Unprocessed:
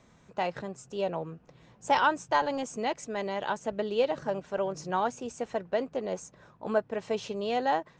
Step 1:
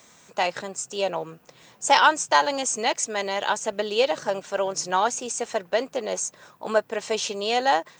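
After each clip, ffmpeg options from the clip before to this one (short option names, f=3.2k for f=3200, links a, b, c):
-af "aemphasis=mode=production:type=riaa,volume=7dB"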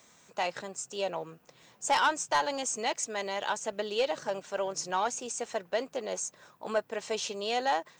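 -af "asoftclip=type=tanh:threshold=-11dB,volume=-6.5dB"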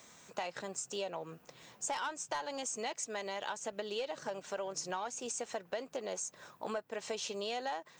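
-af "acompressor=threshold=-38dB:ratio=6,volume=2dB"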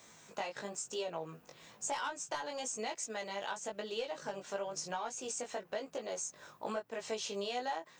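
-af "flanger=delay=17.5:depth=2.9:speed=1,volume=2.5dB"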